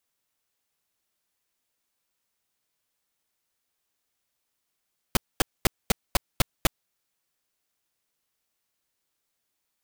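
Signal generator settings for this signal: noise bursts pink, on 0.02 s, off 0.23 s, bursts 7, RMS -18.5 dBFS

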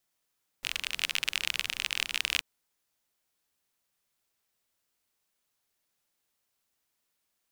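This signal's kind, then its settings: rain from filtered ticks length 1.78 s, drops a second 38, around 2700 Hz, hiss -21 dB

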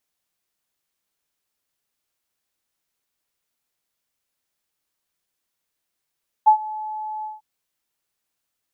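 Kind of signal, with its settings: ADSR sine 860 Hz, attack 19 ms, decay 92 ms, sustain -20 dB, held 0.78 s, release 0.168 s -7 dBFS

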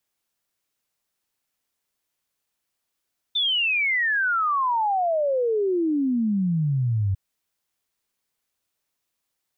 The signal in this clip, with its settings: log sweep 3600 Hz -> 93 Hz 3.80 s -19.5 dBFS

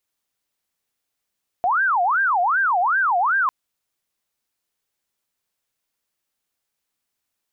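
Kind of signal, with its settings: siren wail 699–1600 Hz 2.6/s sine -16 dBFS 1.85 s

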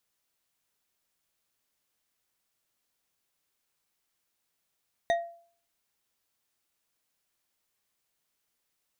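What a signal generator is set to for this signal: glass hit bar, lowest mode 682 Hz, decay 0.49 s, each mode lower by 7 dB, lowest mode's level -20 dB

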